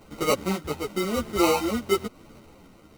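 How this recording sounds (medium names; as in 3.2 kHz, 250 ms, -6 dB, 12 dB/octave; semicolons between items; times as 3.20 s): aliases and images of a low sample rate 1.7 kHz, jitter 0%; tremolo triangle 0.96 Hz, depth 40%; a shimmering, thickened sound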